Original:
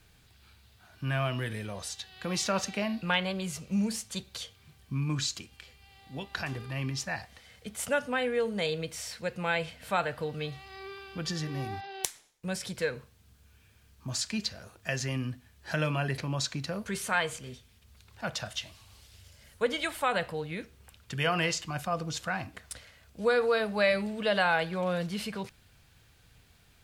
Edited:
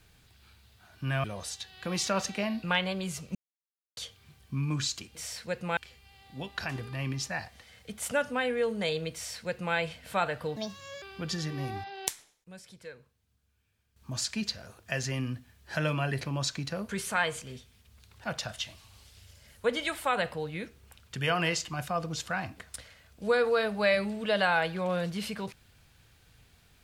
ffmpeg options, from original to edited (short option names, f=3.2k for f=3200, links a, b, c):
-filter_complex "[0:a]asplit=10[a][b][c][d][e][f][g][h][i][j];[a]atrim=end=1.242[k];[b]atrim=start=1.628:end=3.74,asetpts=PTS-STARTPTS,afade=t=out:st=2.108:d=0.004:c=hsin[l];[c]atrim=start=3.74:end=4.36,asetpts=PTS-STARTPTS,volume=0[m];[d]atrim=start=4.36:end=5.542,asetpts=PTS-STARTPTS,afade=t=in:d=0.004:c=hsin[n];[e]atrim=start=8.898:end=9.522[o];[f]atrim=start=5.538:end=10.334[p];[g]atrim=start=10.33:end=10.99,asetpts=PTS-STARTPTS,asetrate=63063,aresample=44100[q];[h]atrim=start=10.986:end=12.41,asetpts=PTS-STARTPTS,afade=t=out:st=1.094:d=0.33:c=log:silence=0.188365[r];[i]atrim=start=12.41:end=13.93,asetpts=PTS-STARTPTS,volume=-14.5dB[s];[j]atrim=start=13.93,asetpts=PTS-STARTPTS,afade=t=in:d=0.33:c=log:silence=0.188365[t];[l][m][n]concat=n=3:v=0:a=1[u];[k][u]acrossfade=d=0.004:c1=hsin:c2=hsin[v];[v][o]acrossfade=d=0.004:c1=hsin:c2=hsin[w];[w][p]acrossfade=d=0.004:c1=hsin:c2=hsin[x];[x][q]acrossfade=d=0.004:c1=hsin:c2=hsin[y];[r][s][t]concat=n=3:v=0:a=1[z];[y][z]acrossfade=d=0.004:c1=hsin:c2=hsin"